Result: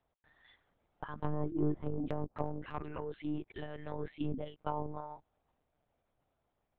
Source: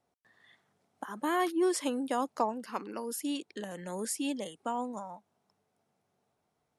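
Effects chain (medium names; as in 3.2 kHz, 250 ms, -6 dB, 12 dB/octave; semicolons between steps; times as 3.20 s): monotone LPC vocoder at 8 kHz 150 Hz; low-pass that closes with the level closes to 440 Hz, closed at -26.5 dBFS; 1.58–3.62 s: transient shaper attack -3 dB, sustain +4 dB; trim -2 dB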